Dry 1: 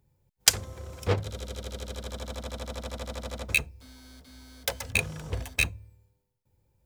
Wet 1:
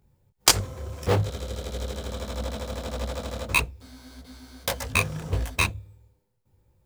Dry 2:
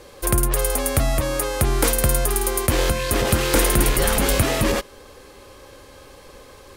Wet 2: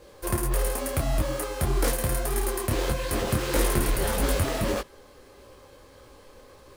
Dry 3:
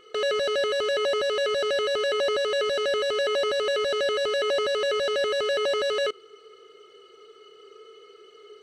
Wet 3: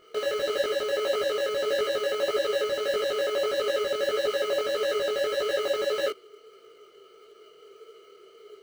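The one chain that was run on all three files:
in parallel at −7 dB: sample-rate reduction 3,600 Hz, jitter 0%
on the sum: micro pitch shift up and down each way 57 cents
loudness normalisation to −27 LKFS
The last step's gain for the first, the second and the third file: +5.5, −5.5, −0.5 decibels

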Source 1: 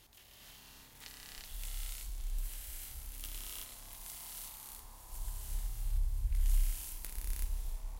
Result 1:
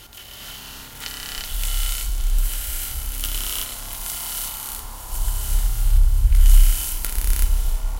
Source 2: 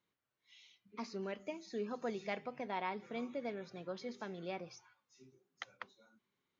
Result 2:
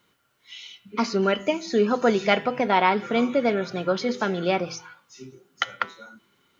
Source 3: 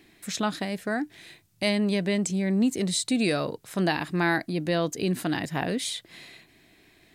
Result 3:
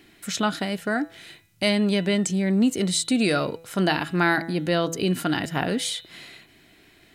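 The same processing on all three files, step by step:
hum removal 165.5 Hz, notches 25
hollow resonant body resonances 1,400/3,000 Hz, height 11 dB, ringing for 45 ms
loudness normalisation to −24 LKFS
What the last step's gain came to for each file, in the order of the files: +18.0, +19.5, +3.0 decibels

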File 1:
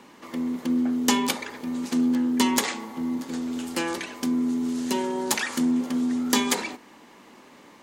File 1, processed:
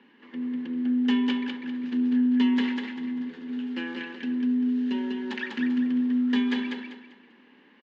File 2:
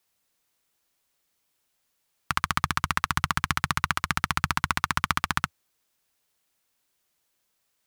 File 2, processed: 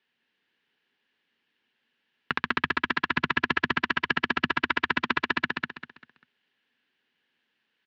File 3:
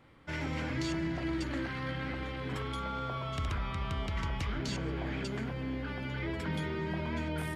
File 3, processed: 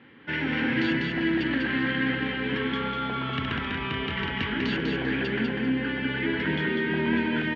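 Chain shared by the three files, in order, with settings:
wave folding −11.5 dBFS
loudspeaker in its box 150–3,700 Hz, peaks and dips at 240 Hz +9 dB, 420 Hz +4 dB, 640 Hz −9 dB, 1,200 Hz −6 dB, 1,700 Hz +10 dB, 2,900 Hz +7 dB
on a send: repeating echo 197 ms, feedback 30%, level −3.5 dB
on the sum: loudness normalisation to −27 LKFS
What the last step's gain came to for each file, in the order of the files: −11.0, +0.5, +6.0 decibels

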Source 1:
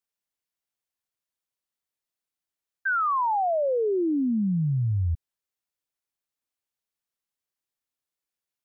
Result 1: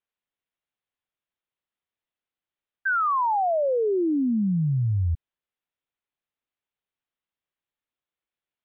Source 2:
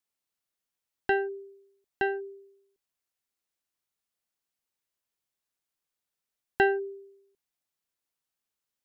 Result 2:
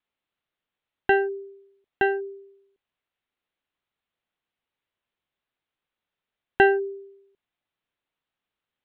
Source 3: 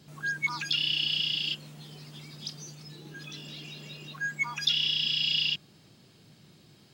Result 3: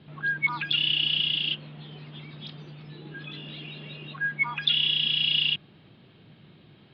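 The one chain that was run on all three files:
Butterworth low-pass 3,700 Hz 48 dB per octave
loudness normalisation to −24 LKFS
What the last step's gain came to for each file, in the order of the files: +1.5, +6.0, +4.0 decibels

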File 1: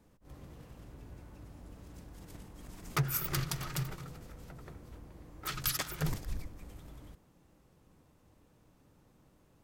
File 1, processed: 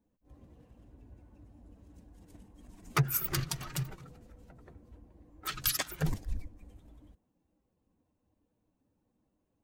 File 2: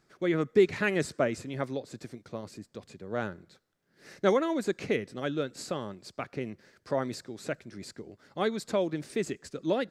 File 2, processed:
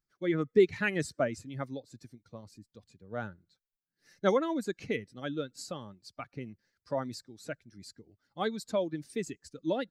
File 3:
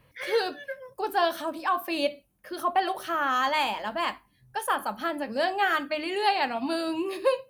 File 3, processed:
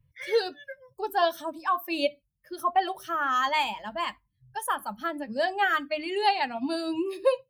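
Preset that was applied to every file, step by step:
spectral dynamics exaggerated over time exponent 1.5
normalise the peak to −12 dBFS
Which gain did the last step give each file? +4.5, +0.5, +2.0 decibels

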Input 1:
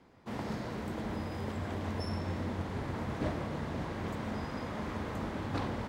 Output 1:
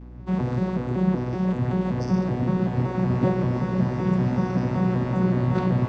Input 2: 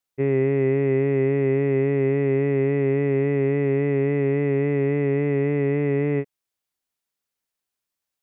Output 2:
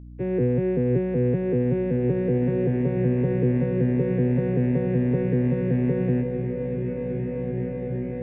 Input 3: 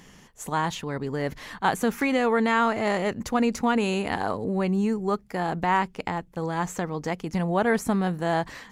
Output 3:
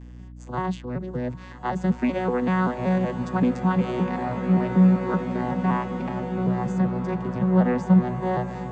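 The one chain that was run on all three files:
vocoder with an arpeggio as carrier bare fifth, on B2, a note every 190 ms
mains hum 60 Hz, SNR 17 dB
slow-attack reverb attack 2,430 ms, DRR 4 dB
loudness normalisation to −24 LKFS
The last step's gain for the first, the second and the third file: +15.0, −1.5, +2.5 decibels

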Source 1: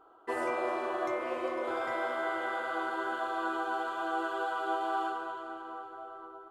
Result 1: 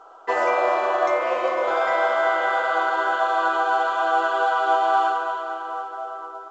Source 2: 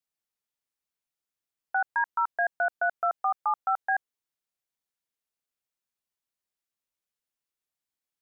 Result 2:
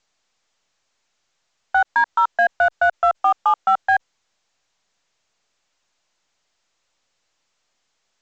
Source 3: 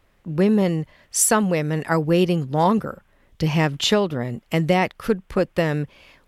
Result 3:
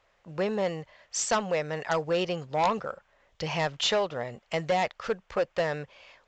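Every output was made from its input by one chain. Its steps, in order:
low shelf with overshoot 410 Hz −10.5 dB, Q 1.5
harmonic generator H 3 −12 dB, 5 −12 dB, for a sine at −5 dBFS
mu-law 128 kbit/s 16,000 Hz
normalise the peak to −9 dBFS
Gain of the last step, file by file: +8.0, +5.5, −6.5 decibels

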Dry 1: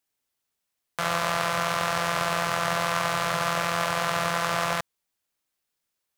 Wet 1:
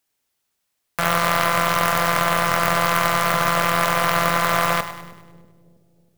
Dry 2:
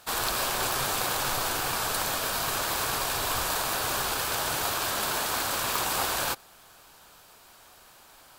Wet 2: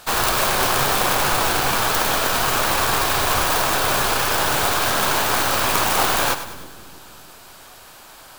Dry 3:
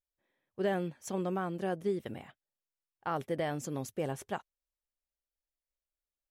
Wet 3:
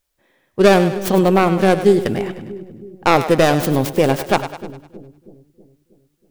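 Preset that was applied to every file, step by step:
stylus tracing distortion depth 0.39 ms
echo with a time of its own for lows and highs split 400 Hz, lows 320 ms, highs 101 ms, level −11.5 dB
normalise the peak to −2 dBFS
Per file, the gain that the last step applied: +6.0, +10.0, +20.0 decibels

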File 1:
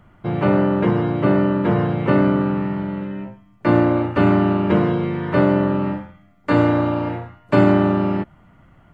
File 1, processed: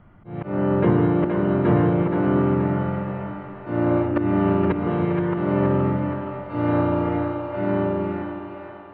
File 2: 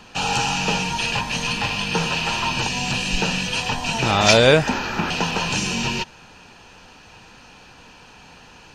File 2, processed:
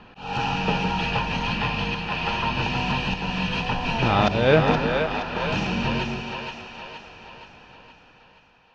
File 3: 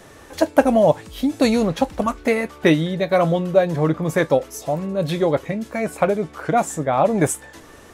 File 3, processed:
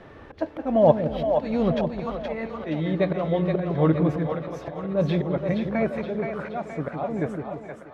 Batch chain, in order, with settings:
fade-out on the ending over 1.86 s
dynamic equaliser 5,800 Hz, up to +4 dB, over −42 dBFS, Q 1.6
volume swells 298 ms
high-frequency loss of the air 350 metres
echo with a time of its own for lows and highs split 480 Hz, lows 160 ms, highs 472 ms, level −5 dB
feedback echo with a swinging delay time 217 ms, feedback 69%, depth 107 cents, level −21.5 dB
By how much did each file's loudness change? −3.5, −3.5, −5.5 LU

